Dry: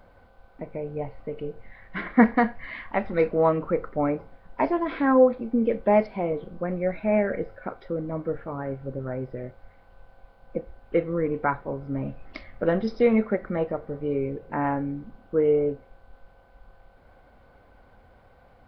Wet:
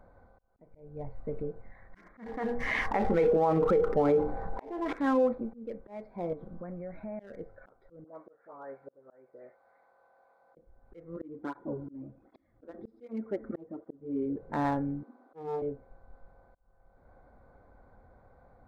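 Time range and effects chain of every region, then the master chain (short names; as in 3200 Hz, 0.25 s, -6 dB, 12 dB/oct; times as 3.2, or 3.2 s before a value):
0.71–1.43 synth low-pass 4400 Hz, resonance Q 1.9 + low shelf 120 Hz +9.5 dB + notches 60/120/180 Hz
2.26–4.93 notches 60/120/180/240/300/360/420/480 Hz + small resonant body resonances 450/800 Hz, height 13 dB, ringing for 80 ms + fast leveller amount 50%
6.33–7.2 bell 420 Hz -6 dB 0.43 oct + compressor 4:1, threshold -35 dBFS
8.04–10.57 HPF 550 Hz + dispersion highs, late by 79 ms, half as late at 1800 Hz
11.16–14.36 resonator 110 Hz, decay 1.5 s, mix 30% + small resonant body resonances 300/3400 Hz, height 15 dB, ringing for 35 ms + tape flanging out of phase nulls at 1.3 Hz, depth 6.5 ms
15.03–15.62 steep high-pass 240 Hz 96 dB/oct + doubler 49 ms -11 dB + Doppler distortion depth 0.41 ms
whole clip: Wiener smoothing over 15 samples; limiter -14.5 dBFS; auto swell 0.61 s; gain -3 dB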